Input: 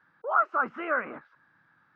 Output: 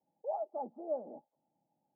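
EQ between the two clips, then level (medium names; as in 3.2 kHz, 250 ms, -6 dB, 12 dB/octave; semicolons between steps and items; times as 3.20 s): high-pass 630 Hz 6 dB/octave; rippled Chebyshev low-pass 860 Hz, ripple 6 dB; +1.5 dB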